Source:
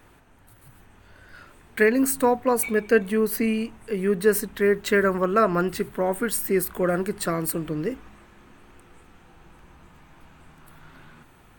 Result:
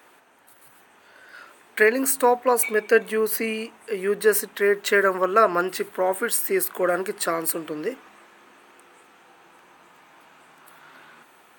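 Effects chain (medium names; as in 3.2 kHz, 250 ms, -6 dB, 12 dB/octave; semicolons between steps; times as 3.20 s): high-pass 420 Hz 12 dB/octave; trim +3.5 dB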